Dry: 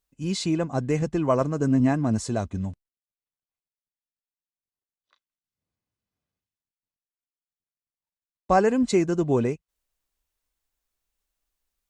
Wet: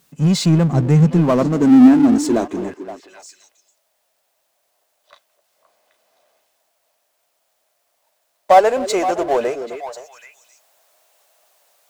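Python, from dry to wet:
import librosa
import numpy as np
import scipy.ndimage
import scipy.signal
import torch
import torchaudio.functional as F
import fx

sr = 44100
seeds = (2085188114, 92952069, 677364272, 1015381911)

y = fx.filter_sweep_highpass(x, sr, from_hz=150.0, to_hz=630.0, start_s=0.89, end_s=3.69, q=4.8)
y = fx.echo_stepped(y, sr, ms=260, hz=330.0, octaves=1.4, feedback_pct=70, wet_db=-11)
y = fx.power_curve(y, sr, exponent=0.7)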